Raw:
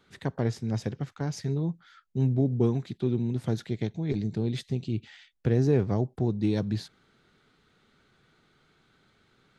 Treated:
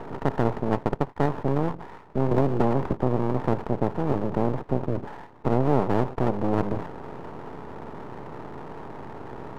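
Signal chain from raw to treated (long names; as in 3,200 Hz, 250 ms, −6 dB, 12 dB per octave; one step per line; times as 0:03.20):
compressor on every frequency bin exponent 0.4
high-pass filter 60 Hz 6 dB per octave
0:00.65–0:01.26: transient designer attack +12 dB, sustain −11 dB
transistor ladder low-pass 980 Hz, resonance 80%
half-wave rectification
boost into a limiter +19.5 dB
0:02.31–0:02.95: multiband upward and downward compressor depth 100%
level −6.5 dB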